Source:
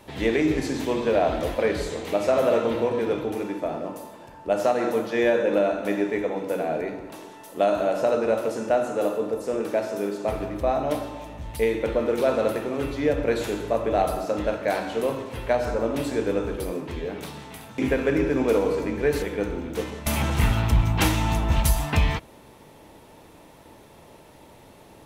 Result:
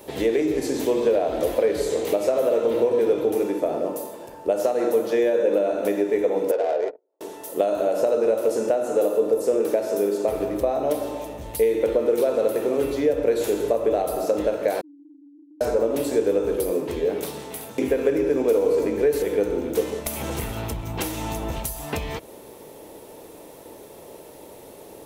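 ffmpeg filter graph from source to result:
-filter_complex "[0:a]asettb=1/sr,asplit=3[a][b][c];[a]atrim=end=6.514[d];[b]atrim=start=6.51:end=7.21,asetpts=PTS-STARTPTS,afade=t=in:d=0.004:c=qsin,afade=t=out:st=0.696:d=0.004:c=qsin,highpass=f=450:w=0.5412,highpass=f=450:w=1.3066,agate=range=-34dB:threshold=-36dB:ratio=16:release=100:detection=peak,adynamicsmooth=sensitivity=3:basefreq=670[e];[c]atrim=start=7.206[f];[d][e]acrossfade=d=0.004:c1=hsin:c2=qsin[g];[g][f]acrossfade=d=0.004:c1=qsin:c2=hsin,asettb=1/sr,asplit=3[h][i][j];[h]atrim=end=14.814[k];[i]atrim=start=14.81:end=15.61,asetpts=PTS-STARTPTS,afade=t=in:d=0.004:c=qsin,afade=t=out:st=0.796:d=0.004:c=qsin,asuperpass=centerf=300:order=12:qfactor=6.8,acompressor=threshold=-51dB:ratio=6:attack=3.2:release=140:knee=1:detection=peak[l];[j]atrim=start=15.606[m];[k][l]acrossfade=d=0.004:c1=hsin:c2=qsin[n];[n][m]acrossfade=d=0.004:c1=qsin:c2=hsin,aemphasis=mode=production:type=75kf,acompressor=threshold=-25dB:ratio=6,equalizer=f=450:t=o:w=1.5:g=14,volume=-3.5dB"

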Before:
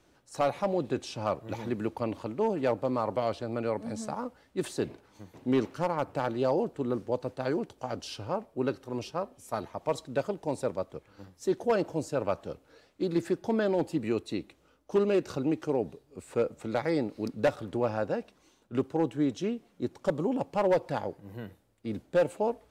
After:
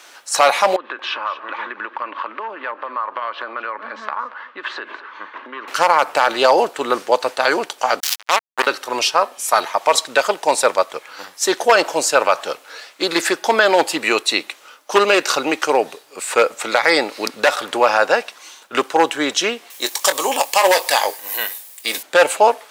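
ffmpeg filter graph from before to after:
-filter_complex "[0:a]asettb=1/sr,asplit=3[a][b][c];[a]atrim=end=0.764[d];[b]atrim=start=0.76:end=5.68,asetpts=PTS-STARTPTS,afade=t=in:d=0.004:c=qsin,afade=t=out:st=4.916:d=0.004:c=qsin,highpass=f=230:w=0.5412,highpass=f=230:w=1.3066,equalizer=f=460:t=q:w=4:g=-4,equalizer=f=740:t=q:w=4:g=-9,equalizer=f=1.1k:t=q:w=4:g=9,equalizer=f=1.6k:t=q:w=4:g=6,equalizer=f=2.3k:t=q:w=4:g=-4,lowpass=f=2.8k:w=0.5412,lowpass=f=2.8k:w=1.3066,acompressor=threshold=-43dB:ratio=6:attack=3.2:release=140:knee=1:detection=peak,aecho=1:1:231:0.158,atrim=end_sample=216972[e];[c]atrim=start=5.676[f];[d][e]acrossfade=d=0.004:c1=hsin:c2=qsin[g];[g][f]acrossfade=d=0.004:c1=qsin:c2=hsin,asettb=1/sr,asplit=3[h][i][j];[h]atrim=end=8.004[k];[i]atrim=start=8:end=8.67,asetpts=PTS-STARTPTS,afade=t=in:d=0.004:c=qsin,afade=t=out:st=0.666:d=0.004:c=qsin,highpass=f=460:p=1,highshelf=f=7.8k:g=11,acrusher=bits=4:mix=0:aa=0.5[l];[j]atrim=start=8.666[m];[k][l]acrossfade=d=0.004:c1=hsin:c2=qsin[n];[n][m]acrossfade=d=0.004:c1=qsin:c2=hsin,asettb=1/sr,asplit=3[o][p][q];[o]atrim=end=19.704[r];[p]atrim=start=19.7:end=22.03,asetpts=PTS-STARTPTS,afade=t=in:d=0.004:c=qsin,afade=t=out:st=2.326:d=0.004:c=qsin,aemphasis=mode=production:type=riaa,bandreject=f=1.4k:w=6.3,asplit=2[s][t];[t]adelay=22,volume=-12dB[u];[s][u]amix=inputs=2:normalize=0,atrim=end_sample=102753[v];[q]atrim=start=22.026[w];[r][v]acrossfade=d=0.004:c1=hsin:c2=qsin[x];[x][w]acrossfade=d=0.004:c1=qsin:c2=hsin,highpass=1.1k,alimiter=level_in=28dB:limit=-1dB:release=50:level=0:latency=1,volume=-1dB"

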